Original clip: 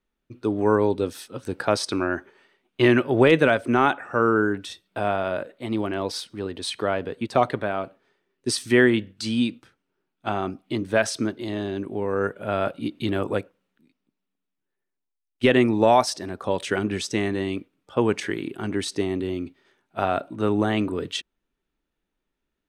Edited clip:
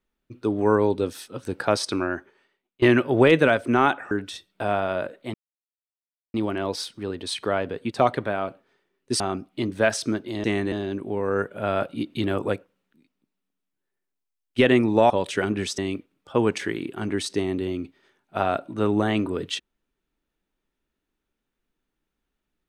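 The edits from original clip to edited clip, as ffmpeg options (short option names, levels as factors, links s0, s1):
-filter_complex "[0:a]asplit=9[s0][s1][s2][s3][s4][s5][s6][s7][s8];[s0]atrim=end=2.82,asetpts=PTS-STARTPTS,afade=t=out:st=1.91:d=0.91:silence=0.0630957[s9];[s1]atrim=start=2.82:end=4.112,asetpts=PTS-STARTPTS,afade=t=in:d=0.004:c=hsin:silence=0.0630957[s10];[s2]atrim=start=4.468:end=5.7,asetpts=PTS-STARTPTS,afade=t=out:st=1.228:d=0.004:c=hsin,apad=pad_dur=1[s11];[s3]atrim=start=5.7:end=8.562,asetpts=PTS-STARTPTS,afade=t=in:d=0.004:c=hsin[s12];[s4]atrim=start=10.328:end=11.572[s13];[s5]atrim=start=17.118:end=17.402[s14];[s6]atrim=start=11.568:end=15.952[s15];[s7]atrim=start=16.438:end=17.122[s16];[s8]atrim=start=17.398[s17];[s9][s10]concat=n=2:v=0:a=1[s18];[s11][s12]concat=n=2:v=0:a=1[s19];[s18][s19]acrossfade=d=0.004:c1=hsin:c2=hsin[s20];[s20][s13]acrossfade=d=0.004:c1=hsin:c2=hsin[s21];[s21][s14]acrossfade=d=0.004:c1=hsin:c2=hsin[s22];[s22][s15]acrossfade=d=0.004:c1=hsin:c2=hsin[s23];[s23][s16]acrossfade=d=0.004:c1=hsin:c2=hsin[s24];[s24][s17]acrossfade=d=0.004:c1=hsin:c2=hsin"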